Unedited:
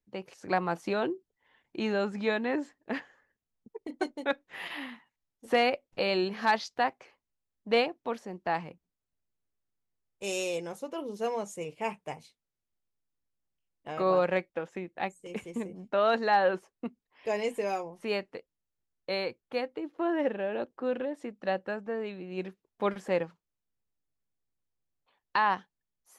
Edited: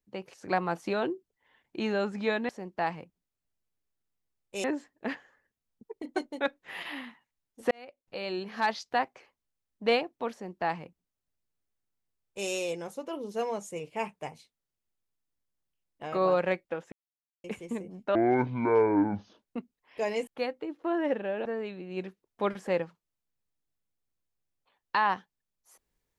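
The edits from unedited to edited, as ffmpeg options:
-filter_complex "[0:a]asplit=10[a][b][c][d][e][f][g][h][i][j];[a]atrim=end=2.492[k];[b]atrim=start=8.168:end=10.322[l];[c]atrim=start=2.488:end=5.56,asetpts=PTS-STARTPTS,afade=t=out:st=3.068:d=0.004:c=hsin[m];[d]atrim=start=5.56:end=14.77,asetpts=PTS-STARTPTS,afade=t=in:d=1.24,afade=t=out:st=9.206:d=0.004:c=hsin[n];[e]atrim=start=14.77:end=15.29,asetpts=PTS-STARTPTS,volume=0[o];[f]atrim=start=15.29:end=16.004,asetpts=PTS-STARTPTS,afade=t=in:d=0.004:c=hsin[p];[g]atrim=start=16:end=16.7,asetpts=PTS-STARTPTS,asetrate=24255,aresample=44100,atrim=end_sample=56127,asetpts=PTS-STARTPTS[q];[h]atrim=start=16.696:end=17.552[r];[i]atrim=start=19.418:end=20.602[s];[j]atrim=start=21.858[t];[k][l]acrossfade=d=0.004:c1=hsin:c2=hsin[u];[m][n][o][p]concat=n=4:v=0:a=1[v];[u][v]acrossfade=d=0.004:c1=hsin:c2=hsin[w];[w][q]acrossfade=d=0.004:c1=hsin:c2=hsin[x];[x][r]acrossfade=d=0.004:c1=hsin:c2=hsin[y];[y][s]acrossfade=d=0.004:c1=hsin:c2=hsin[z];[z][t]acrossfade=d=0.004:c1=hsin:c2=hsin"

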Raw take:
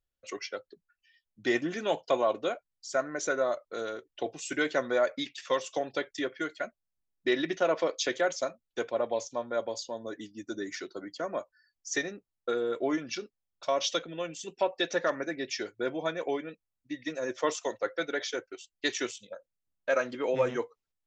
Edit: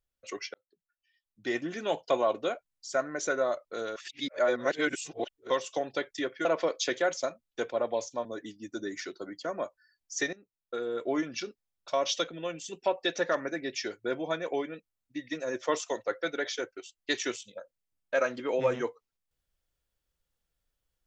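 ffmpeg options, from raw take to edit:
-filter_complex "[0:a]asplit=7[a][b][c][d][e][f][g];[a]atrim=end=0.54,asetpts=PTS-STARTPTS,afade=t=out:st=0.536:d=0.004:c=hsin[h];[b]atrim=start=0.54:end=3.962,asetpts=PTS-STARTPTS,afade=t=in:d=1.55[i];[c]atrim=start=3.958:end=5.502,asetpts=PTS-STARTPTS,areverse[j];[d]atrim=start=5.498:end=6.452[k];[e]atrim=start=7.638:end=9.442[l];[f]atrim=start=9.998:end=12.08,asetpts=PTS-STARTPTS,afade=t=out:st=2.078:d=0.004:c=hsin:silence=0.158489[m];[g]atrim=start=12.08,asetpts=PTS-STARTPTS,afade=t=in:d=0.85:silence=0.158489[n];[h][i]concat=n=2:v=0:a=1[o];[o][j]acrossfade=d=0.004:c1=hsin:c2=hsin[p];[p][k]acrossfade=d=0.004:c1=hsin:c2=hsin[q];[q][l]acrossfade=d=0.004:c1=hsin:c2=hsin[r];[m][n]concat=n=2:v=0:a=1[s];[r][s]acrossfade=d=0.004:c1=hsin:c2=hsin"

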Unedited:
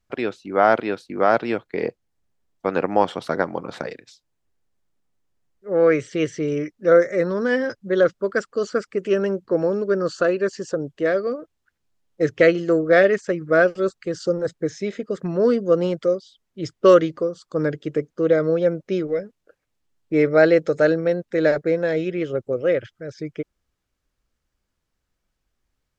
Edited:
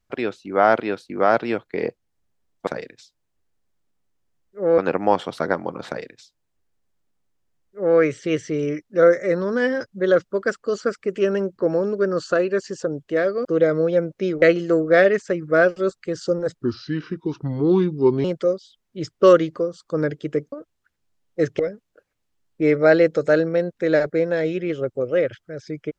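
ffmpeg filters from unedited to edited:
-filter_complex "[0:a]asplit=9[a][b][c][d][e][f][g][h][i];[a]atrim=end=2.672[j];[b]atrim=start=3.758:end=5.872[k];[c]atrim=start=2.668:end=11.342[l];[d]atrim=start=18.138:end=19.112[m];[e]atrim=start=12.408:end=14.614[n];[f]atrim=start=14.61:end=15.86,asetpts=PTS-STARTPTS,asetrate=33957,aresample=44100[o];[g]atrim=start=15.856:end=18.142[p];[h]atrim=start=11.338:end=12.412[q];[i]atrim=start=19.108[r];[j][k]acrossfade=d=0.004:c1=hsin:c2=hsin[s];[s][l]acrossfade=d=0.004:c1=hsin:c2=hsin[t];[t][m]acrossfade=d=0.004:c1=hsin:c2=hsin[u];[u][n]acrossfade=d=0.004:c1=hsin:c2=hsin[v];[v][o]acrossfade=d=0.004:c1=hsin:c2=hsin[w];[w][p]acrossfade=d=0.004:c1=hsin:c2=hsin[x];[x][q]acrossfade=d=0.004:c1=hsin:c2=hsin[y];[y][r]acrossfade=d=0.004:c1=hsin:c2=hsin"

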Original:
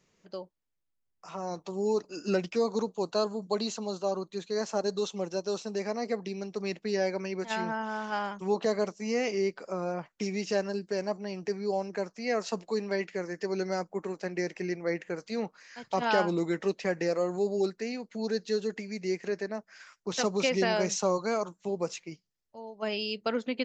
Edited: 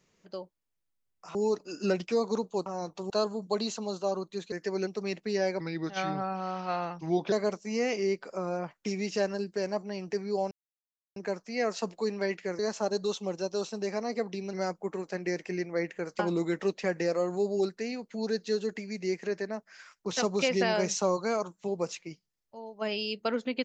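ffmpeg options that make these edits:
-filter_complex "[0:a]asplit=12[a][b][c][d][e][f][g][h][i][j][k][l];[a]atrim=end=1.352[m];[b]atrim=start=1.788:end=3.102[n];[c]atrim=start=1.348:end=1.792[o];[d]atrim=start=3.098:end=4.522[p];[e]atrim=start=13.288:end=13.642[q];[f]atrim=start=6.458:end=7.194[r];[g]atrim=start=7.19:end=8.67,asetpts=PTS-STARTPTS,asetrate=37926,aresample=44100,atrim=end_sample=75893,asetpts=PTS-STARTPTS[s];[h]atrim=start=8.666:end=11.86,asetpts=PTS-STARTPTS,afade=t=out:st=3.19:d=0.004:c=hsin,apad=pad_dur=0.65[t];[i]atrim=start=11.86:end=13.292,asetpts=PTS-STARTPTS,afade=t=in:d=0.004:c=hsin[u];[j]atrim=start=4.518:end=6.462[v];[k]atrim=start=13.638:end=15.302[w];[l]atrim=start=16.198[x];[m][n]acrossfade=d=0.004:c1=hsin:c2=hsin[y];[y][o]acrossfade=d=0.004:c1=hsin:c2=hsin[z];[z][p]acrossfade=d=0.004:c1=hsin:c2=hsin[aa];[aa][q]acrossfade=d=0.004:c1=hsin:c2=hsin[ab];[ab][r]acrossfade=d=0.004:c1=hsin:c2=hsin[ac];[ac][s]acrossfade=d=0.004:c1=hsin:c2=hsin[ad];[t][u]concat=n=2:v=0:a=1[ae];[ad][ae]acrossfade=d=0.004:c1=hsin:c2=hsin[af];[af][v]acrossfade=d=0.004:c1=hsin:c2=hsin[ag];[ag][w]acrossfade=d=0.004:c1=hsin:c2=hsin[ah];[ah][x]acrossfade=d=0.004:c1=hsin:c2=hsin"

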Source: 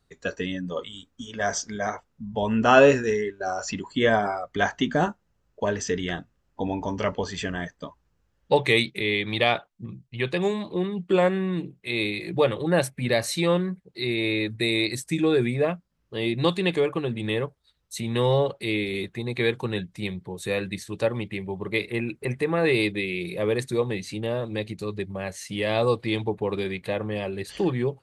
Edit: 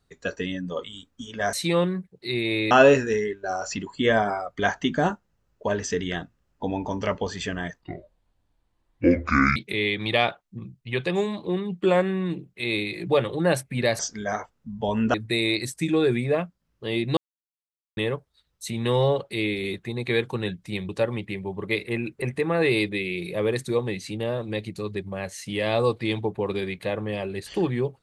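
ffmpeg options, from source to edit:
-filter_complex "[0:a]asplit=10[a][b][c][d][e][f][g][h][i][j];[a]atrim=end=1.532[k];[b]atrim=start=13.258:end=14.442[l];[c]atrim=start=2.678:end=7.784[m];[d]atrim=start=7.78:end=8.83,asetpts=PTS-STARTPTS,asetrate=26460,aresample=44100[n];[e]atrim=start=8.826:end=13.262[o];[f]atrim=start=1.528:end=2.682[p];[g]atrim=start=14.438:end=16.47,asetpts=PTS-STARTPTS,afade=t=out:st=2.028:d=0.004:c=hsin[q];[h]atrim=start=16.47:end=17.27,asetpts=PTS-STARTPTS,volume=0[r];[i]atrim=start=17.27:end=20.192,asetpts=PTS-STARTPTS,afade=t=in:d=0.004:c=hsin[s];[j]atrim=start=20.918[t];[k][l]acrossfade=d=0.004:c1=hsin:c2=hsin[u];[u][m]acrossfade=d=0.004:c1=hsin:c2=hsin[v];[v][n]acrossfade=d=0.004:c1=hsin:c2=hsin[w];[w][o]acrossfade=d=0.004:c1=hsin:c2=hsin[x];[x][p]acrossfade=d=0.004:c1=hsin:c2=hsin[y];[q][r][s]concat=n=3:v=0:a=1[z];[y][z]acrossfade=d=0.004:c1=hsin:c2=hsin[aa];[aa][t]acrossfade=d=0.004:c1=hsin:c2=hsin"

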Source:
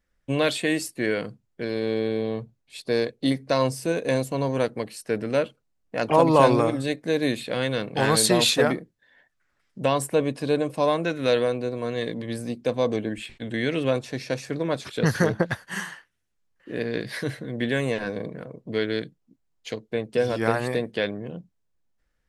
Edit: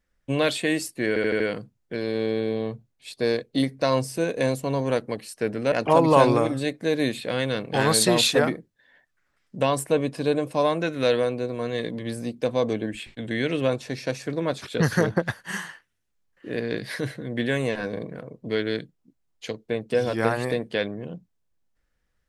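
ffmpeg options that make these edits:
-filter_complex "[0:a]asplit=6[a][b][c][d][e][f];[a]atrim=end=1.162[g];[b]atrim=start=1.078:end=1.162[h];[c]atrim=start=1.078:end=1.162[i];[d]atrim=start=1.078:end=1.162[j];[e]atrim=start=1.078:end=5.402[k];[f]atrim=start=5.948[l];[g][h]acrossfade=d=0.004:c1=hsin:c2=hsin[m];[m][i]acrossfade=d=0.004:c1=hsin:c2=hsin[n];[n][j]acrossfade=d=0.004:c1=hsin:c2=hsin[o];[o][k]acrossfade=d=0.004:c1=hsin:c2=hsin[p];[p][l]acrossfade=d=0.004:c1=hsin:c2=hsin"

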